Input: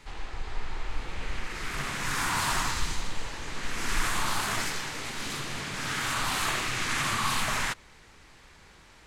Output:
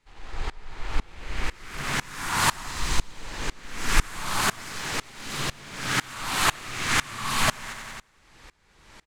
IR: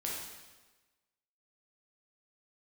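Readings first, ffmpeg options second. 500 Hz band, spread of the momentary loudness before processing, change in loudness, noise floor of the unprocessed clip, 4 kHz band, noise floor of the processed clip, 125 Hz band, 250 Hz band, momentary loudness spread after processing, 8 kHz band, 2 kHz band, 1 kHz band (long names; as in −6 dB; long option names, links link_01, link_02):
+2.5 dB, 12 LU, +2.5 dB, −54 dBFS, +2.5 dB, −62 dBFS, +3.0 dB, +2.5 dB, 14 LU, +2.5 dB, +2.0 dB, +2.0 dB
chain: -filter_complex "[0:a]asplit=2[link_01][link_02];[link_02]acrusher=bits=5:mix=0:aa=0.5,volume=-12dB[link_03];[link_01][link_03]amix=inputs=2:normalize=0,aecho=1:1:93|186|279|372|465|558|651:0.376|0.207|0.114|0.0625|0.0344|0.0189|0.0104,aeval=exprs='val(0)*pow(10,-25*if(lt(mod(-2*n/s,1),2*abs(-2)/1000),1-mod(-2*n/s,1)/(2*abs(-2)/1000),(mod(-2*n/s,1)-2*abs(-2)/1000)/(1-2*abs(-2)/1000))/20)':channel_layout=same,volume=7dB"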